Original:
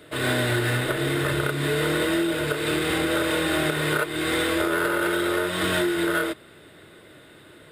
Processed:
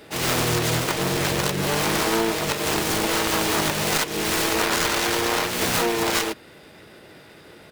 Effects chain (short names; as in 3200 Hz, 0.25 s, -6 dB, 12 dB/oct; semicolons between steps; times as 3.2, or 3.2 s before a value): self-modulated delay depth 0.88 ms; harmoniser -7 st -10 dB, +5 st -2 dB